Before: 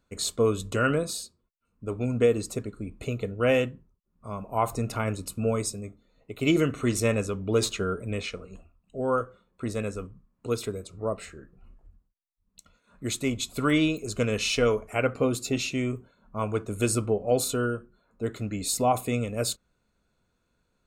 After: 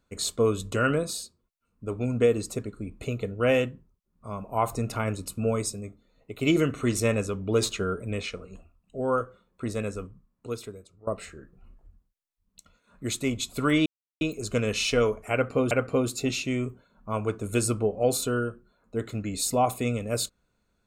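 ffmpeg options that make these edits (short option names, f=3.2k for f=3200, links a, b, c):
-filter_complex "[0:a]asplit=4[a][b][c][d];[a]atrim=end=11.07,asetpts=PTS-STARTPTS,afade=t=out:st=9.97:d=1.1:silence=0.1[e];[b]atrim=start=11.07:end=13.86,asetpts=PTS-STARTPTS,afade=t=in:d=0.004:c=hsin:silence=0.1,afade=t=out:st=2.786:d=0.004:c=hsin,apad=pad_dur=0.35[f];[c]atrim=start=13.86:end=15.362,asetpts=PTS-STARTPTS,afade=t=in:d=0.004:c=hsin[g];[d]atrim=start=14.978[h];[e][f][g]concat=n=3:v=0:a=1[i];[i][h]acrossfade=d=0.004:c1=hsin:c2=hsin"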